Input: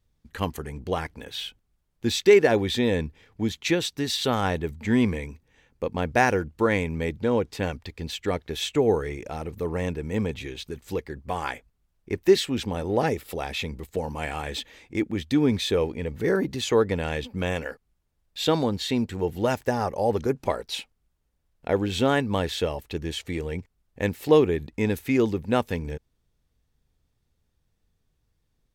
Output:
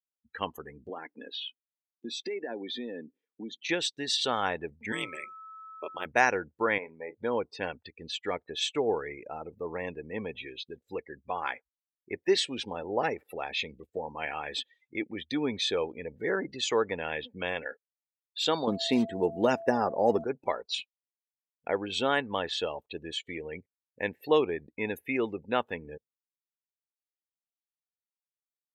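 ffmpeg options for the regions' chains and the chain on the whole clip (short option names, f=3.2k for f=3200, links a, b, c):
-filter_complex "[0:a]asettb=1/sr,asplit=3[a][b][c];[a]atrim=end=0.894[d];[b]atrim=start=0.89:end=3.69,asetpts=PTS-STARTPTS,afade=t=in:d=0.004:c=qsin,afade=t=out:st=2.796:d=0.004:c=qsin,acompressor=threshold=-32dB:ratio=4:attack=3.2:release=140:knee=1:detection=peak,highpass=f=250:t=q:w=2.7[e];[c]atrim=start=3.686[f];[d][e]acrossfade=d=0.004:c1=hsin:c2=qsin[g];[g][f]acrossfade=d=0.004:c1=qsin:c2=hsin,asettb=1/sr,asplit=3[h][i][j];[h]atrim=end=4.924[k];[i]atrim=start=4.92:end=6.06,asetpts=PTS-STARTPTS,afade=t=in:d=0.004:c=qsin,afade=t=out:st=1.136:d=0.004:c=qsin,aemphasis=mode=production:type=riaa,aeval=exprs='val(0)*sin(2*PI*84*n/s)':c=same,aeval=exprs='val(0)+0.00794*sin(2*PI*1300*n/s)':c=same[l];[j]atrim=start=6.056[m];[k][l]acrossfade=d=0.004:c1=hsin:c2=qsin[n];[n][m]acrossfade=d=0.004:c1=qsin:c2=hsin,asettb=1/sr,asplit=3[o][p][q];[o]atrim=end=6.784[r];[p]atrim=start=6.78:end=7.18,asetpts=PTS-STARTPTS,afade=t=in:d=0.004:c=qsin,afade=t=out:st=0.396:d=0.004:c=qsin,bandpass=f=830:t=q:w=0.98,asplit=2[s][t];[t]adelay=38,volume=-12.5dB[u];[s][u]amix=inputs=2:normalize=0,atrim=end_sample=17640[v];[q]atrim=start=7.176[w];[r][v]acrossfade=d=0.004:c1=hsin:c2=qsin[x];[x][w]acrossfade=d=0.004:c1=qsin:c2=hsin,asettb=1/sr,asplit=3[y][z][aa];[y]atrim=end=18.674[ab];[z]atrim=start=18.67:end=20.24,asetpts=PTS-STARTPTS,afade=t=in:d=0.004:c=qsin,afade=t=out:st=1.566:d=0.004:c=qsin,equalizer=f=230:t=o:w=2.1:g=10.5,aeval=exprs='val(0)+0.0178*sin(2*PI*670*n/s)':c=same,acrusher=bits=6:mode=log:mix=0:aa=0.000001[ac];[aa]atrim=start=20.236[ad];[ab][ac]acrossfade=d=0.004:c1=hsin:c2=qsin[ae];[ae][ad]acrossfade=d=0.004:c1=qsin:c2=hsin,afftdn=nr=35:nf=-38,highpass=f=820:p=1"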